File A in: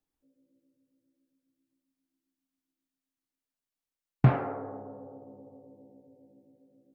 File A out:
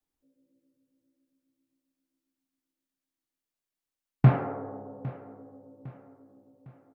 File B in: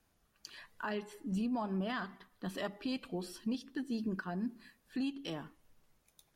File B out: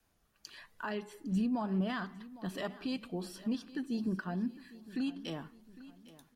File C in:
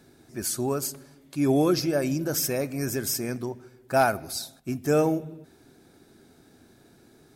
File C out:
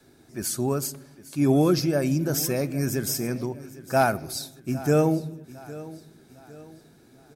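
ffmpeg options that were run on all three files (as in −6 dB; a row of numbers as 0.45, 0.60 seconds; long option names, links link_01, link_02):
-af "adynamicequalizer=threshold=0.01:dfrequency=160:dqfactor=1.2:tfrequency=160:tqfactor=1.2:attack=5:release=100:ratio=0.375:range=3:mode=boostabove:tftype=bell,aecho=1:1:806|1612|2418|3224:0.126|0.0541|0.0233|0.01"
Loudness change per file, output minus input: +1.0, +2.0, +1.5 LU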